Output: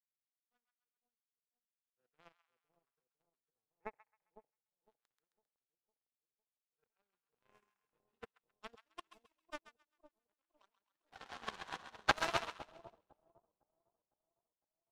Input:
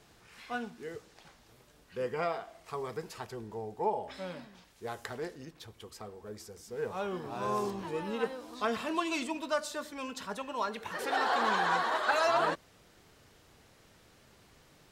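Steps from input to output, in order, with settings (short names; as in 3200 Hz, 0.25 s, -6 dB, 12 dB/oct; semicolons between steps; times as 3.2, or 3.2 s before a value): power-law curve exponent 3; split-band echo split 860 Hz, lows 0.506 s, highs 0.133 s, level -4 dB; upward expander 2.5:1, over -55 dBFS; gain +7.5 dB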